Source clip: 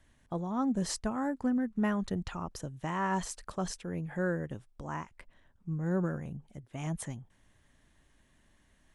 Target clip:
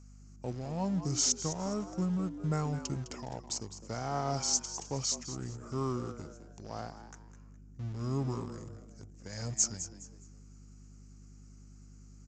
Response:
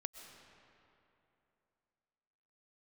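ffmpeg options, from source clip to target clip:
-filter_complex "[0:a]highpass=120,acrossover=split=510|2100[link_01][link_02][link_03];[link_03]aeval=exprs='0.0211*(abs(mod(val(0)/0.0211+3,4)-2)-1)':channel_layout=same[link_04];[link_01][link_02][link_04]amix=inputs=3:normalize=0,asetrate=32149,aresample=44100,aexciter=amount=13.1:drive=3.9:freq=5400,asplit=2[link_05][link_06];[link_06]aeval=exprs='val(0)*gte(abs(val(0)),0.0188)':channel_layout=same,volume=-6dB[link_07];[link_05][link_07]amix=inputs=2:normalize=0,aeval=exprs='val(0)+0.00501*(sin(2*PI*50*n/s)+sin(2*PI*2*50*n/s)/2+sin(2*PI*3*50*n/s)/3+sin(2*PI*4*50*n/s)/4+sin(2*PI*5*50*n/s)/5)':channel_layout=same,asplit=4[link_08][link_09][link_10][link_11];[link_09]adelay=207,afreqshift=110,volume=-12dB[link_12];[link_10]adelay=414,afreqshift=220,volume=-22.5dB[link_13];[link_11]adelay=621,afreqshift=330,volume=-32.9dB[link_14];[link_08][link_12][link_13][link_14]amix=inputs=4:normalize=0,aresample=16000,aresample=44100,volume=-6dB"

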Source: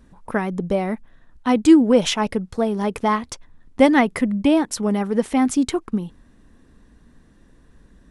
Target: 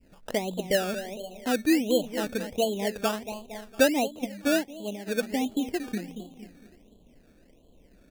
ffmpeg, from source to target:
ffmpeg -i in.wav -filter_complex "[0:a]bandreject=frequency=57.1:width_type=h:width=4,bandreject=frequency=114.2:width_type=h:width=4,bandreject=frequency=171.3:width_type=h:width=4,bandreject=frequency=228.4:width_type=h:width=4,asplit=2[link_01][link_02];[link_02]aecho=0:1:229|458|687|916:0.251|0.0904|0.0326|0.0117[link_03];[link_01][link_03]amix=inputs=2:normalize=0,adynamicequalizer=threshold=0.0398:dfrequency=590:dqfactor=0.8:tfrequency=590:tqfactor=0.8:attack=5:release=100:ratio=0.375:range=3:mode=cutabove:tftype=bell,asplit=2[link_04][link_05];[link_05]adelay=491,lowpass=frequency=2000:poles=1,volume=-22.5dB,asplit=2[link_06][link_07];[link_07]adelay=491,lowpass=frequency=2000:poles=1,volume=0.26[link_08];[link_06][link_08]amix=inputs=2:normalize=0[link_09];[link_04][link_09]amix=inputs=2:normalize=0,acompressor=threshold=-29dB:ratio=1.5,asplit=3[link_10][link_11][link_12];[link_10]afade=type=out:start_time=3.92:duration=0.02[link_13];[link_11]agate=range=-9dB:threshold=-23dB:ratio=16:detection=peak,afade=type=in:start_time=3.92:duration=0.02,afade=type=out:start_time=5.06:duration=0.02[link_14];[link_12]afade=type=in:start_time=5.06:duration=0.02[link_15];[link_13][link_14][link_15]amix=inputs=3:normalize=0,firequalizer=gain_entry='entry(110,0);entry(630,13);entry(1500,-25)':delay=0.05:min_phase=1,acrusher=samples=17:mix=1:aa=0.000001:lfo=1:lforange=10.2:lforate=1.4,volume=-8dB" out.wav

